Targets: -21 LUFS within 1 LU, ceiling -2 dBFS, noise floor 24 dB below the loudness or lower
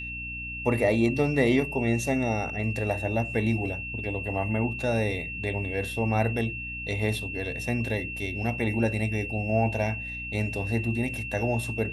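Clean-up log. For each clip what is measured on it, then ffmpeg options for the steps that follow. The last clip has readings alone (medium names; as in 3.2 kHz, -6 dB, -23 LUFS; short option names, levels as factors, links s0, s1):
hum 60 Hz; highest harmonic 300 Hz; hum level -39 dBFS; steady tone 2.7 kHz; tone level -34 dBFS; loudness -27.5 LUFS; peak level -9.5 dBFS; loudness target -21.0 LUFS
-> -af "bandreject=f=60:t=h:w=4,bandreject=f=120:t=h:w=4,bandreject=f=180:t=h:w=4,bandreject=f=240:t=h:w=4,bandreject=f=300:t=h:w=4"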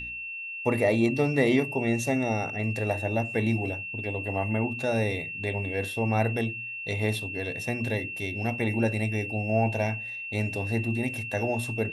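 hum not found; steady tone 2.7 kHz; tone level -34 dBFS
-> -af "bandreject=f=2700:w=30"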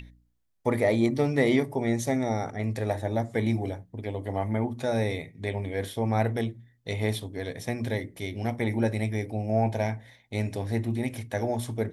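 steady tone not found; loudness -29.0 LUFS; peak level -10.5 dBFS; loudness target -21.0 LUFS
-> -af "volume=2.51"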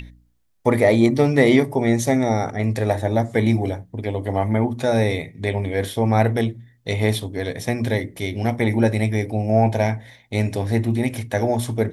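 loudness -21.0 LUFS; peak level -2.5 dBFS; noise floor -57 dBFS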